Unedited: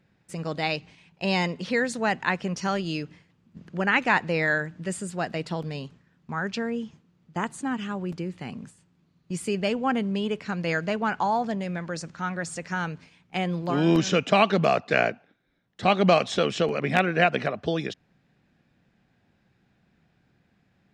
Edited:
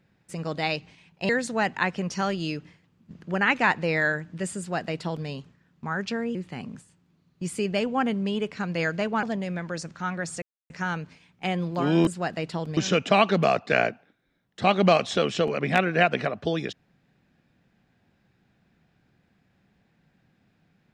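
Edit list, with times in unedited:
1.29–1.75 s: delete
5.04–5.74 s: copy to 13.98 s
6.81–8.24 s: delete
11.12–11.42 s: delete
12.61 s: insert silence 0.28 s

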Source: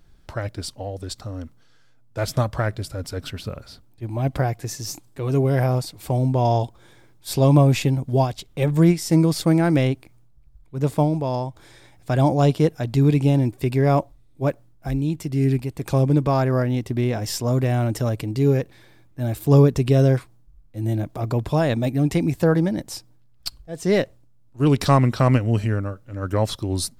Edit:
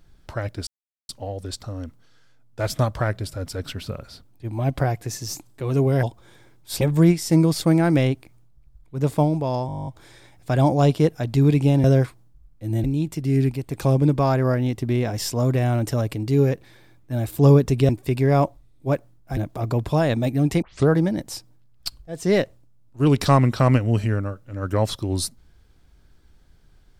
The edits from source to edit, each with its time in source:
0.67 s: insert silence 0.42 s
5.61–6.60 s: delete
7.38–8.61 s: delete
11.47 s: stutter 0.02 s, 11 plays
13.44–14.92 s: swap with 19.97–20.97 s
22.22 s: tape start 0.27 s

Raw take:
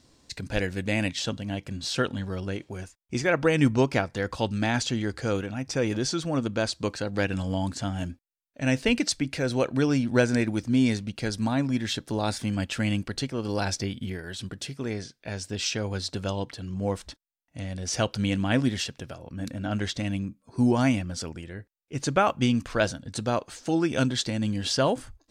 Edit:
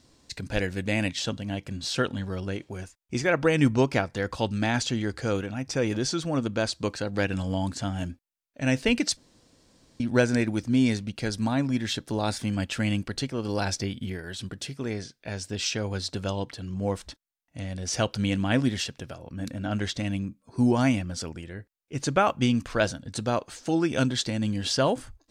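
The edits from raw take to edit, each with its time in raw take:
9.17–10.00 s: room tone

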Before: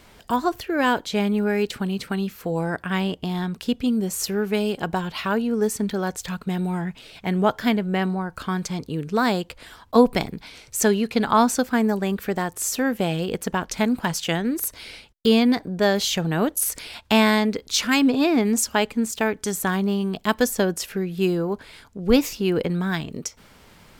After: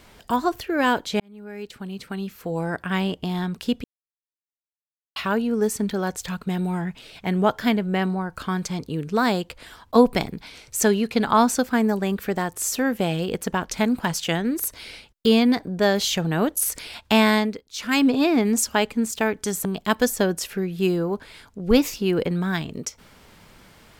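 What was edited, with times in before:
1.20–2.90 s: fade in
3.84–5.16 s: mute
17.38–17.99 s: dip -18.5 dB, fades 0.27 s
19.65–20.04 s: delete

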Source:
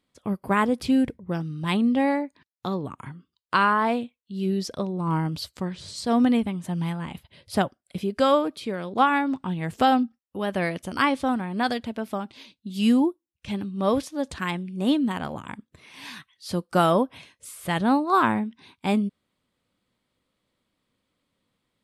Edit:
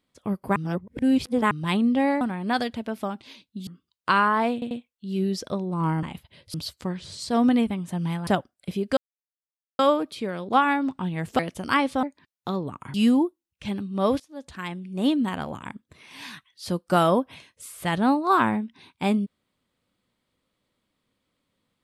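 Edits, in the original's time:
0.56–1.51 s: reverse
2.21–3.12 s: swap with 11.31–12.77 s
3.98 s: stutter 0.09 s, 3 plays
7.03–7.54 s: move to 5.30 s
8.24 s: insert silence 0.82 s
9.84–10.67 s: delete
14.03–14.96 s: fade in, from -18.5 dB

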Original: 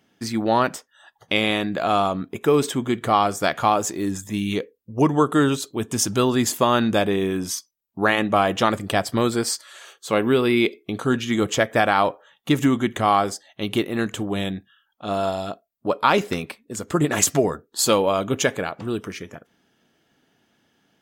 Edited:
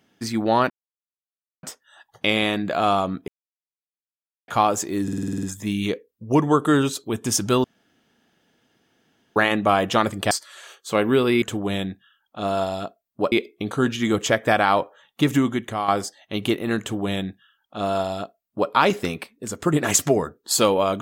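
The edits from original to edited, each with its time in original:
0.70 s: insert silence 0.93 s
2.35–3.55 s: mute
4.10 s: stutter 0.05 s, 9 plays
6.31–8.03 s: room tone
8.98–9.49 s: delete
12.61–13.16 s: fade out linear, to -9.5 dB
14.08–15.98 s: copy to 10.60 s

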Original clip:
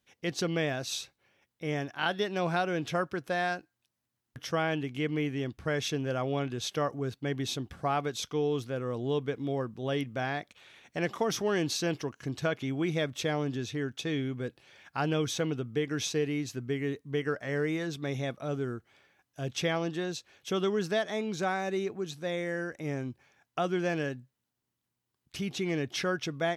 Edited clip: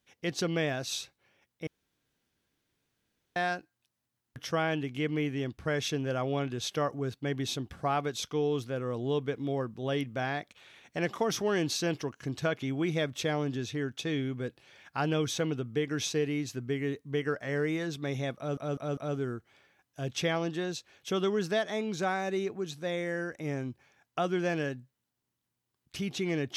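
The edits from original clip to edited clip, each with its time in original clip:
1.67–3.36 s: room tone
18.37 s: stutter 0.20 s, 4 plays

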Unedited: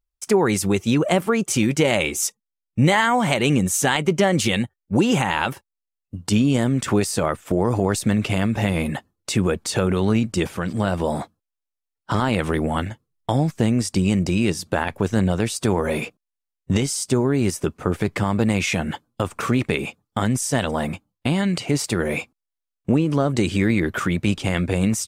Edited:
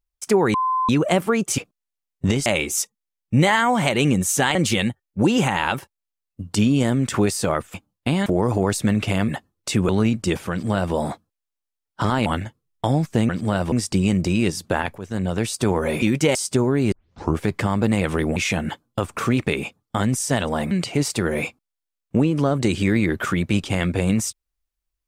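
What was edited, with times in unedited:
0.54–0.89 s: bleep 1.03 kHz -18 dBFS
1.58–1.91 s: swap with 16.04–16.92 s
4.00–4.29 s: delete
8.50–8.89 s: delete
9.50–9.99 s: delete
10.61–11.04 s: copy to 13.74 s
12.36–12.71 s: move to 18.58 s
15.00–15.49 s: fade in, from -15 dB
17.49 s: tape start 0.46 s
20.93–21.45 s: move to 7.48 s

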